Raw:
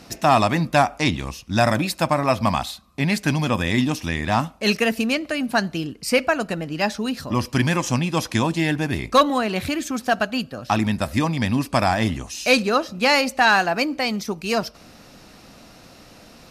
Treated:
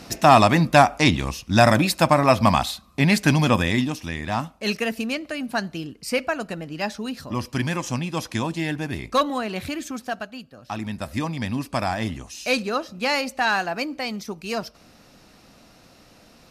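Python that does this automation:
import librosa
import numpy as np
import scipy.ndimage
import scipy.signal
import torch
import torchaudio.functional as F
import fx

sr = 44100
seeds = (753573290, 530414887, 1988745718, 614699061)

y = fx.gain(x, sr, db=fx.line((3.54, 3.0), (3.94, -5.0), (9.9, -5.0), (10.42, -14.0), (11.16, -5.5)))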